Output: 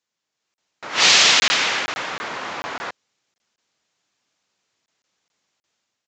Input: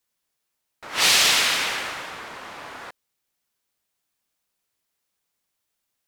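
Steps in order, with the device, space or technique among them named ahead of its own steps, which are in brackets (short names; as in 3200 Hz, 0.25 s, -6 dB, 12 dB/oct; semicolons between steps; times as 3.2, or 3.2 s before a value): call with lost packets (HPF 110 Hz 12 dB/oct; downsampling 16000 Hz; AGC gain up to 9 dB; packet loss packets of 20 ms random)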